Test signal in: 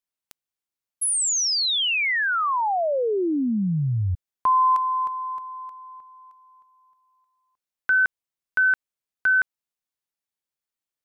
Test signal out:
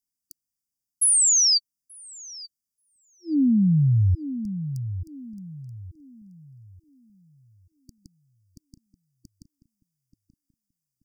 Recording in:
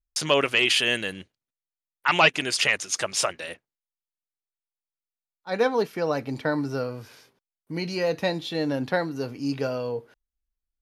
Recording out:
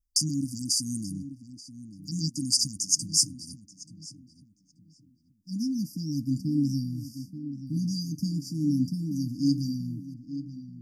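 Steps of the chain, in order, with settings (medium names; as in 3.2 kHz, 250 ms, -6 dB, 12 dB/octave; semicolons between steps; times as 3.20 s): brick-wall FIR band-stop 310–4600 Hz; filtered feedback delay 882 ms, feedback 35%, low-pass 1.9 kHz, level -11 dB; trim +4.5 dB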